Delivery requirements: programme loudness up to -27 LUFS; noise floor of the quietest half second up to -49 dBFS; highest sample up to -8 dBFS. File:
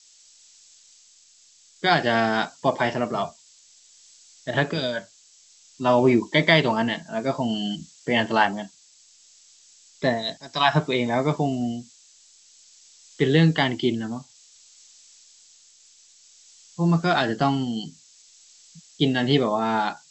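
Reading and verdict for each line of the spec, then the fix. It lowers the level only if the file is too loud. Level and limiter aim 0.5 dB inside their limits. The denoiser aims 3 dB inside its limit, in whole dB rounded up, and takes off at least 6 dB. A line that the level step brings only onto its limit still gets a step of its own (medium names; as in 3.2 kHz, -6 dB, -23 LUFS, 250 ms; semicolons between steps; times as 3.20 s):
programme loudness -23.0 LUFS: fail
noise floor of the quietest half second -55 dBFS: pass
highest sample -4.0 dBFS: fail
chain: trim -4.5 dB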